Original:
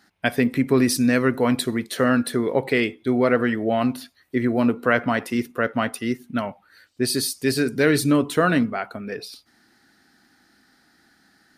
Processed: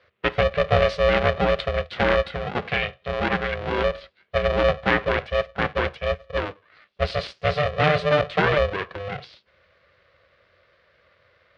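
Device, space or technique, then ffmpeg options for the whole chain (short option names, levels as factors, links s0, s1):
ring modulator pedal into a guitar cabinet: -filter_complex "[0:a]asettb=1/sr,asplit=3[s0][s1][s2];[s0]atrim=end=2.304[s3];[s1]atrim=start=2.3:end=3.78,asetpts=PTS-STARTPTS,afade=t=in:d=0.004:c=qsin,afade=t=out:st=1.476:d=0.004:c=qsin,equalizer=f=310:w=1.5:g=-10.5[s4];[s2]atrim=start=3.776[s5];[s3][s4]acrossfade=d=0.004:c1=hsin:c2=qsin[s6];[s6][s5]acrossfade=d=0.004:c1=qsin:c2=hsin,aeval=exprs='val(0)*sgn(sin(2*PI*300*n/s))':c=same,highpass=77,equalizer=f=79:t=q:w=4:g=5,equalizer=f=250:t=q:w=4:g=-8,equalizer=f=510:t=q:w=4:g=4,equalizer=f=900:t=q:w=4:g=-7,lowpass=f=3500:w=0.5412,lowpass=f=3500:w=1.3066"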